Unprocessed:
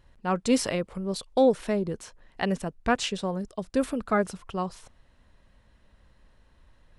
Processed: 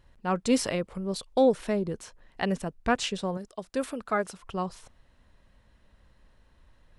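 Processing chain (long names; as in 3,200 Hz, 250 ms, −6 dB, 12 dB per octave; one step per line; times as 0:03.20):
0:03.37–0:04.43: low-shelf EQ 250 Hz −11.5 dB
level −1 dB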